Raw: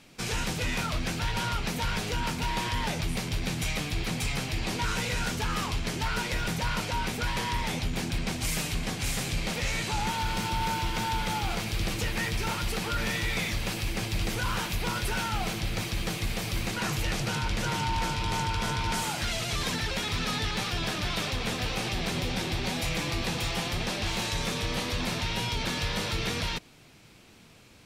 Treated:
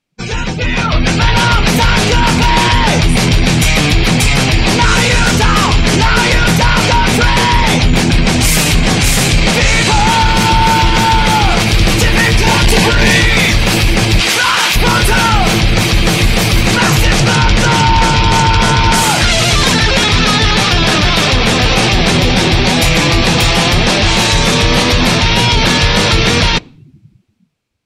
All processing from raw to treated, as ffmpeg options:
-filter_complex "[0:a]asettb=1/sr,asplit=3[a][b][c];[a]atrim=end=12.414[d];[b]atrim=start=12.41:end=13.21,asetpts=PTS-STARTPTS,afade=t=in:d=0.004:c=qsin,afade=t=out:st=0.796:d=0.004:c=qsin,asoftclip=type=hard:threshold=-30dB,asuperstop=centerf=1300:order=4:qfactor=5.2[e];[c]atrim=start=13.206[f];[d][e]acrossfade=d=0.004:c1=hsin:c2=qsin[g];[g][f]acrossfade=d=0.004:c1=qsin:c2=hsin,asettb=1/sr,asplit=3[h][i][j];[h]atrim=end=14.204[k];[i]atrim=start=14.2:end=14.76,asetpts=PTS-STARTPTS,afade=t=in:d=0.004:c=qsin,afade=t=out:st=0.556:d=0.004:c=qsin,highpass=f=1.4k:p=1,highshelf=f=9.8k:g=-7.5,acontrast=39[l];[j]atrim=start=14.756[m];[k][l]acrossfade=d=0.004:c1=hsin:c2=qsin[n];[n][m]acrossfade=d=0.004:c1=qsin:c2=hsin,dynaudnorm=f=140:g=17:m=12dB,afftdn=nr=33:nf=-36,alimiter=level_in=14.5dB:limit=-1dB:release=50:level=0:latency=1,volume=-1dB"

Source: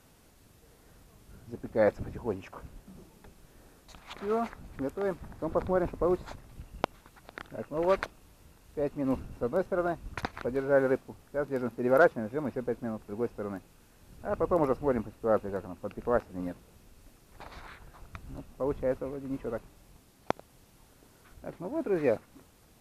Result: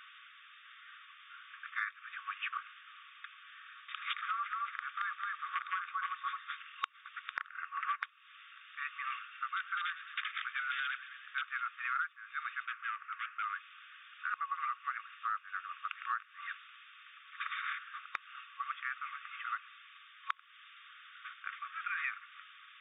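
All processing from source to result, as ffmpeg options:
-filter_complex "[0:a]asettb=1/sr,asplit=3[a][b][c];[a]atrim=end=4.214[d];[b]atrim=start=4.21:end=6.82,asetpts=PTS-STARTPTS,afade=t=in:d=0.004:c=qsin,afade=t=out:st=2.606:d=0.004:c=qsin,aecho=1:1:221:0.562,atrim=end_sample=115101,adynamicequalizer=threshold=0.00251:dfrequency=2300:dqfactor=1.2:tfrequency=2300:tqfactor=1.2:attack=5:release=100:ratio=0.375:range=2:mode=cutabove:tftype=bell,volume=20dB,asoftclip=hard,volume=-20dB[e];[c]atrim=start=6.816[f];[d][e]acrossfade=d=0.004:c1=hsin:c2=qsin[g];[g][f]acrossfade=d=0.004:c1=qsin:c2=hsin,asettb=1/sr,asplit=3[h][i][j];[h]atrim=end=7.374[k];[i]atrim=start=7.37:end=8.02,asetpts=PTS-STARTPTS,afade=t=in:d=0.004:c=qsin,afade=t=out:st=0.646:d=0.004:c=qsin,lowpass=1.9k,asoftclip=type=hard:threshold=-16dB[l];[j]atrim=start=8.016[m];[k][l]acrossfade=d=0.004:c1=hsin:c2=qsin[n];[n][m]acrossfade=d=0.004:c1=qsin:c2=hsin,asettb=1/sr,asplit=3[o][p][q];[o]atrim=end=9.334[r];[p]atrim=start=9.33:end=11.42,asetpts=PTS-STARTPTS,afade=t=in:d=0.004:c=qsin,afade=t=out:st=2.086:d=0.004:c=qsin,highpass=f=1.2k:w=0.5412,highpass=f=1.2k:w=1.3066,aeval=exprs='(mod(56.2*val(0)+1,2)-1)/56.2':c=same,asplit=6[s][t][u][v][w][x];[t]adelay=107,afreqshift=62,volume=-18dB[y];[u]adelay=214,afreqshift=124,volume=-22.9dB[z];[v]adelay=321,afreqshift=186,volume=-27.8dB[aa];[w]adelay=428,afreqshift=248,volume=-32.6dB[ab];[x]adelay=535,afreqshift=310,volume=-37.5dB[ac];[s][y][z][aa][ab][ac]amix=inputs=6:normalize=0,atrim=end_sample=92169[ad];[q]atrim=start=11.416[ae];[r][ad]acrossfade=d=0.004:c1=hsin:c2=qsin[af];[af][ae]acrossfade=d=0.004:c1=qsin:c2=hsin,asettb=1/sr,asplit=3[ag][ah][ai];[ag]atrim=end=12.654[aj];[ah]atrim=start=12.65:end=13.45,asetpts=PTS-STARTPTS,afade=t=in:d=0.004:c=qsin,afade=t=out:st=0.796:d=0.004:c=qsin,highpass=f=120:w=0.5412,highpass=f=120:w=1.3066,equalizer=f=240:t=q:w=4:g=-6,equalizer=f=490:t=q:w=4:g=-8,equalizer=f=1.3k:t=q:w=4:g=4,lowpass=f=2.3k:w=0.5412,lowpass=f=2.3k:w=1.3066,asoftclip=type=hard:threshold=-33.5dB[ak];[ai]atrim=start=13.446[al];[aj][ak]acrossfade=d=0.004:c1=hsin:c2=qsin[am];[am][al]acrossfade=d=0.004:c1=qsin:c2=hsin,afftfilt=real='re*between(b*sr/4096,1100,3700)':imag='im*between(b*sr/4096,1100,3700)':win_size=4096:overlap=0.75,acompressor=threshold=-48dB:ratio=10,volume=14.5dB"

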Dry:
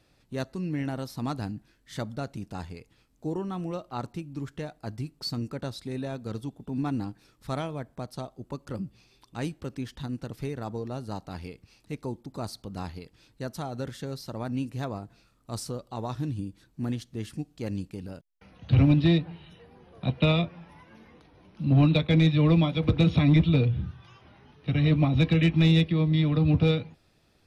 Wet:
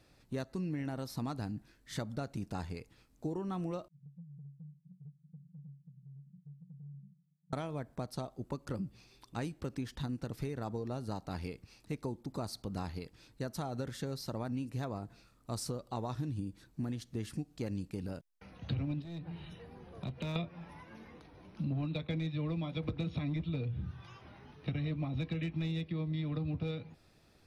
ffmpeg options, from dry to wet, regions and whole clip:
-filter_complex "[0:a]asettb=1/sr,asplit=3[a][b][c];[a]atrim=end=3.884[d];[b]atrim=start=3.88:end=7.53,asetpts=PTS-STARTPTS,afade=t=in:d=0.004:c=qsin,afade=t=out:st=3.646:d=0.004:c=qsin,asuperpass=centerf=160:order=12:qfactor=3.5,acompressor=threshold=-49dB:ratio=4:attack=3.2:release=140:knee=1:detection=peak[e];[c]atrim=start=7.526[f];[d][e]acrossfade=d=0.004:c1=hsin:c2=qsin[g];[g][f]acrossfade=d=0.004:c1=qsin:c2=hsin,asettb=1/sr,asplit=3[h][i][j];[h]atrim=end=19.024[k];[i]atrim=start=19.02:end=20.36,asetpts=PTS-STARTPTS,afade=t=in:d=0.004:c=qsin,afade=t=out:st=1.336:d=0.004:c=qsin,bass=f=250:g=3,treble=f=4k:g=1,acompressor=threshold=-40dB:ratio=2.5:attack=3.2:release=140:knee=1:detection=peak,asoftclip=type=hard:threshold=-33dB[l];[j]atrim=start=20.356[m];[k][l]acrossfade=d=0.004:c1=hsin:c2=qsin[n];[n][m]acrossfade=d=0.004:c1=qsin:c2=hsin,equalizer=f=3.1k:w=3.3:g=-3,acompressor=threshold=-33dB:ratio=10"

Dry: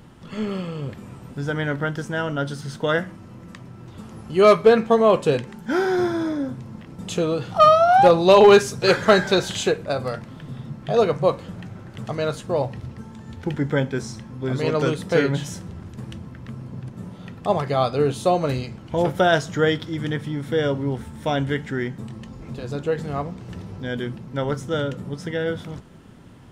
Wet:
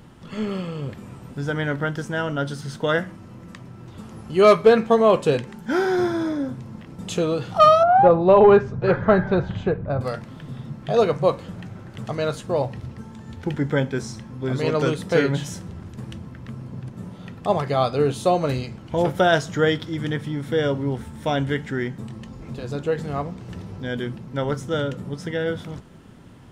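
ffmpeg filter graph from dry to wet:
-filter_complex "[0:a]asettb=1/sr,asplit=3[a][b][c];[a]atrim=end=7.834[d];[b]atrim=start=7.83:end=10.01,asetpts=PTS-STARTPTS,afade=t=in:d=0.004:c=qsin,afade=t=out:st=2.176:d=0.004:c=qsin,lowpass=1.3k,asubboost=boost=6:cutoff=170[e];[c]atrim=start=10.006[f];[d][e]acrossfade=d=0.004:c1=hsin:c2=qsin[g];[g][f]acrossfade=d=0.004:c1=qsin:c2=hsin"

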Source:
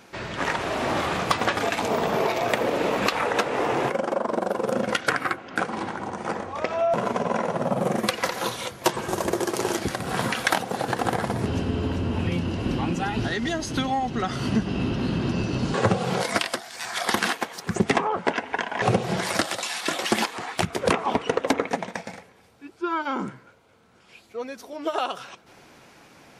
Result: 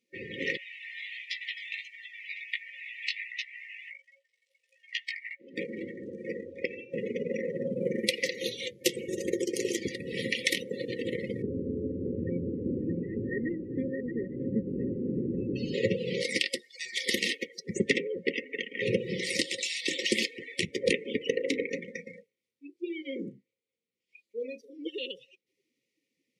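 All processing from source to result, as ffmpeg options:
-filter_complex "[0:a]asettb=1/sr,asplit=3[a][b][c];[a]atrim=end=0.574[d];[b]atrim=start=0.57:end=5.4,asetpts=PTS-STARTPTS,afade=t=in:d=0.004:c=qsin,afade=t=out:st=4.826:d=0.004:c=qsin,highpass=f=1.2k:w=0.5412,highpass=f=1.2k:w=1.3066,highshelf=f=11k:g=-10.5,flanger=delay=16:depth=3.5:speed=1.4[e];[c]atrim=start=5.396[f];[d][e]acrossfade=d=0.004:c1=hsin:c2=qsin[g];[g][f]acrossfade=d=0.004:c1=qsin:c2=hsin,asettb=1/sr,asplit=3[h][i][j];[h]atrim=end=11.424[k];[i]atrim=start=11.42:end=15.56,asetpts=PTS-STARTPTS,afade=t=in:d=0.004:c=qsin,afade=t=out:st=4.136:d=0.004:c=qsin,lowpass=f=1.6k:w=0.5412,lowpass=f=1.6k:w=1.3066,aecho=1:1:624:0.531,atrim=end_sample=182574[l];[j]atrim=start=15.556[m];[k][l]acrossfade=d=0.004:c1=hsin:c2=qsin[n];[n][m]acrossfade=d=0.004:c1=qsin:c2=hsin,asettb=1/sr,asplit=3[o][p][q];[o]atrim=end=21.304[r];[p]atrim=start=21.3:end=24.83,asetpts=PTS-STARTPTS,afade=t=in:d=0.004:c=qsin,afade=t=out:st=3.526:d=0.004:c=qsin,bandreject=f=50:t=h:w=6,bandreject=f=100:t=h:w=6,bandreject=f=150:t=h:w=6,bandreject=f=200:t=h:w=6,bandreject=f=250:t=h:w=6,bandreject=f=300:t=h:w=6,bandreject=f=350:t=h:w=6,bandreject=f=400:t=h:w=6,bandreject=f=450:t=h:w=6,bandreject=f=500:t=h:w=6,asoftclip=type=hard:threshold=-16.5dB,asplit=2[s][t];[t]adelay=35,volume=-9.5dB[u];[s][u]amix=inputs=2:normalize=0,atrim=end_sample=155673[v];[q]atrim=start=24.826[w];[r][v]acrossfade=d=0.004:c1=hsin:c2=qsin[x];[x][w]acrossfade=d=0.004:c1=qsin:c2=hsin,afftdn=nr=28:nf=-36,afftfilt=real='re*(1-between(b*sr/4096,550,1800))':imag='im*(1-between(b*sr/4096,550,1800))':win_size=4096:overlap=0.75,highpass=f=430:p=1"

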